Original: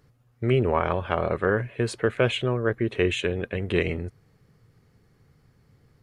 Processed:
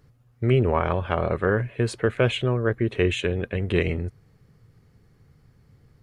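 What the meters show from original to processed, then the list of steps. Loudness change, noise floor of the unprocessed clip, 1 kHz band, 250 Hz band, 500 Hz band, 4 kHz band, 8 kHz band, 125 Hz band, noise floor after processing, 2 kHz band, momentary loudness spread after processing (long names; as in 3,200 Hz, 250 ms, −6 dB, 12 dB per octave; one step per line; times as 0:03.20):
+1.5 dB, −63 dBFS, 0.0 dB, +1.5 dB, +0.5 dB, 0.0 dB, 0.0 dB, +3.5 dB, −60 dBFS, 0.0 dB, 6 LU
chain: low-shelf EQ 150 Hz +6 dB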